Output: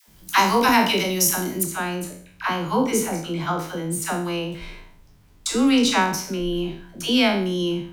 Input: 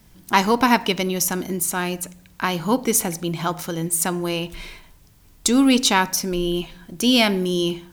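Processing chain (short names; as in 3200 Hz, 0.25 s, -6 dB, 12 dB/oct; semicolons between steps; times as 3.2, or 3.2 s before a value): spectral trails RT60 0.51 s; high shelf 4900 Hz +3 dB, from 1.63 s -11 dB; dispersion lows, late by 80 ms, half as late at 610 Hz; gain -2 dB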